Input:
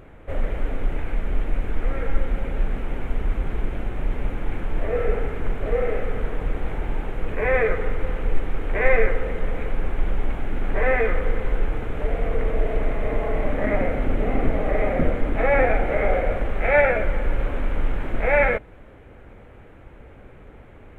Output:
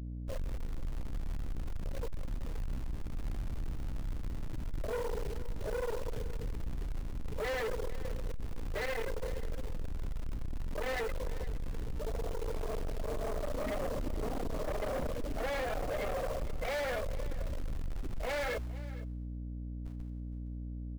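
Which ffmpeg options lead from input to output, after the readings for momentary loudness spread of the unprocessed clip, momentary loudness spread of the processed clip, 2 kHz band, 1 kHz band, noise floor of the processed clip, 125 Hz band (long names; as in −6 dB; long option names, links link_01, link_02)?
10 LU, 7 LU, −16.5 dB, −13.5 dB, −40 dBFS, −10.5 dB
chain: -filter_complex "[0:a]afftfilt=real='re*gte(hypot(re,im),0.158)':imag='im*gte(hypot(re,im),0.158)':win_size=1024:overlap=0.75,lowpass=frequency=2300:width=0.5412,lowpass=frequency=2300:width=1.3066,lowshelf=frequency=390:gain=-6,bandreject=frequency=60:width_type=h:width=6,bandreject=frequency=120:width_type=h:width=6,bandreject=frequency=180:width_type=h:width=6,bandreject=frequency=240:width_type=h:width=6,bandreject=frequency=300:width_type=h:width=6,bandreject=frequency=360:width_type=h:width=6,alimiter=limit=-18.5dB:level=0:latency=1:release=159,areverse,acompressor=mode=upward:threshold=-34dB:ratio=2.5,areverse,acrusher=bits=2:mode=log:mix=0:aa=0.000001,aeval=exprs='val(0)+0.0112*(sin(2*PI*60*n/s)+sin(2*PI*2*60*n/s)/2+sin(2*PI*3*60*n/s)/3+sin(2*PI*4*60*n/s)/4+sin(2*PI*5*60*n/s)/5)':channel_layout=same,asoftclip=type=tanh:threshold=-33dB,asplit=2[link_01][link_02];[link_02]aecho=0:1:463:0.133[link_03];[link_01][link_03]amix=inputs=2:normalize=0,volume=1dB"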